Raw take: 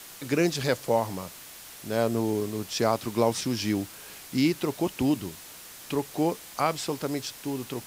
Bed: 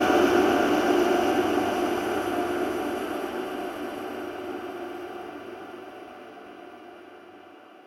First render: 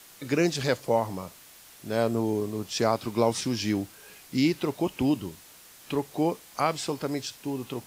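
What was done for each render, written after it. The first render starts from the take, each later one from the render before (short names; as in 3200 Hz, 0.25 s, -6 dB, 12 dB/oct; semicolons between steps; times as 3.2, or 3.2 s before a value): noise print and reduce 6 dB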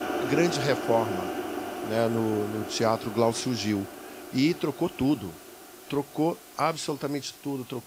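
add bed -9 dB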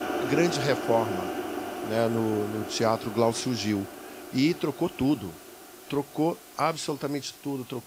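nothing audible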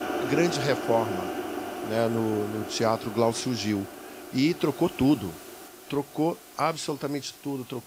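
4.6–5.68 gain +3 dB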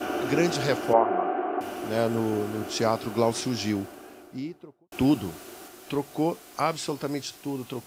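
0.93–1.61 speaker cabinet 250–2200 Hz, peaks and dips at 410 Hz +6 dB, 720 Hz +9 dB, 1100 Hz +7 dB; 3.59–4.92 studio fade out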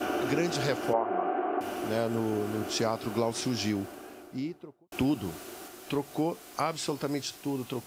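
compressor 2.5:1, threshold -26 dBFS, peak gain reduction 8.5 dB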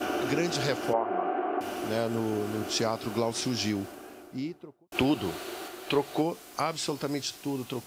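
dynamic EQ 4400 Hz, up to +3 dB, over -50 dBFS, Q 0.74; 4.95–6.22 spectral gain 320–4700 Hz +6 dB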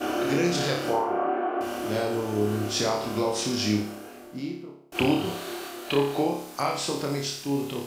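flutter echo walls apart 4.9 m, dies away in 0.59 s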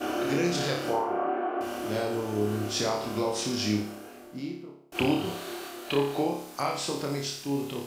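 gain -2.5 dB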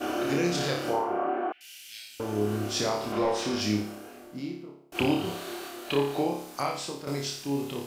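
1.52–2.2 inverse Chebyshev high-pass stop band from 1200 Hz; 3.12–3.61 overdrive pedal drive 16 dB, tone 1400 Hz, clips at -16 dBFS; 6.61–7.07 fade out, to -9.5 dB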